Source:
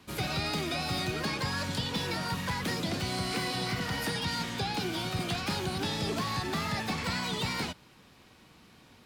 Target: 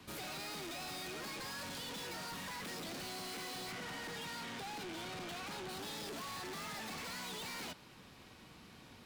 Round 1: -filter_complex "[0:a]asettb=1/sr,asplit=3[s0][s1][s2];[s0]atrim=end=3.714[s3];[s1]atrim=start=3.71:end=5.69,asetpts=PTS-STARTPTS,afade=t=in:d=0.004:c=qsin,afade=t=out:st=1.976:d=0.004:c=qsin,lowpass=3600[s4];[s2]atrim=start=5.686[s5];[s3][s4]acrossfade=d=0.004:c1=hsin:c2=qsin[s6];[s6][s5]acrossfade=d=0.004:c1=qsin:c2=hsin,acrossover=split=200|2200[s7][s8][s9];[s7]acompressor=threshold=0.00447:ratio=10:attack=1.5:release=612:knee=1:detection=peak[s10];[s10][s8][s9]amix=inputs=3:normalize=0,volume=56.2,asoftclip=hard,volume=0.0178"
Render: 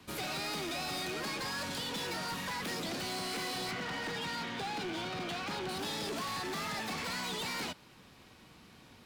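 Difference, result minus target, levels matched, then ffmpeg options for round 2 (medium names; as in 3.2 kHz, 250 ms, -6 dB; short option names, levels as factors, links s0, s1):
overload inside the chain: distortion -4 dB
-filter_complex "[0:a]asettb=1/sr,asplit=3[s0][s1][s2];[s0]atrim=end=3.714[s3];[s1]atrim=start=3.71:end=5.69,asetpts=PTS-STARTPTS,afade=t=in:d=0.004:c=qsin,afade=t=out:st=1.976:d=0.004:c=qsin,lowpass=3600[s4];[s2]atrim=start=5.686[s5];[s3][s4]acrossfade=d=0.004:c1=hsin:c2=qsin[s6];[s6][s5]acrossfade=d=0.004:c1=qsin:c2=hsin,acrossover=split=200|2200[s7][s8][s9];[s7]acompressor=threshold=0.00447:ratio=10:attack=1.5:release=612:knee=1:detection=peak[s10];[s10][s8][s9]amix=inputs=3:normalize=0,volume=150,asoftclip=hard,volume=0.00668"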